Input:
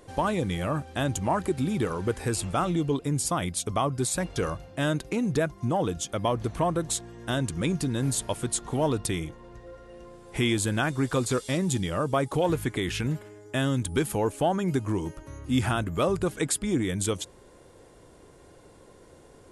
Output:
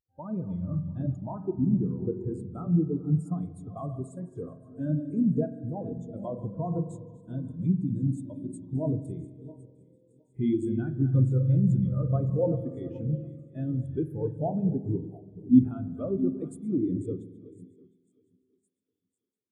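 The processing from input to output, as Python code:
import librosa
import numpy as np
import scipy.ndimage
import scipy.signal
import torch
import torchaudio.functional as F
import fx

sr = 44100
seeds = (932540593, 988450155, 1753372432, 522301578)

p1 = fx.reverse_delay_fb(x, sr, ms=353, feedback_pct=66, wet_db=-8.5)
p2 = fx.high_shelf(p1, sr, hz=8300.0, db=7.0)
p3 = fx.rev_spring(p2, sr, rt60_s=3.0, pass_ms=(46,), chirp_ms=45, drr_db=2.5)
p4 = fx.vibrato(p3, sr, rate_hz=0.37, depth_cents=30.0)
p5 = fx.highpass(p4, sr, hz=190.0, slope=6)
p6 = fx.low_shelf(p5, sr, hz=270.0, db=10.5)
p7 = p6 + fx.echo_wet_highpass(p6, sr, ms=1060, feedback_pct=79, hz=3200.0, wet_db=-9.0, dry=0)
y = fx.spectral_expand(p7, sr, expansion=2.5)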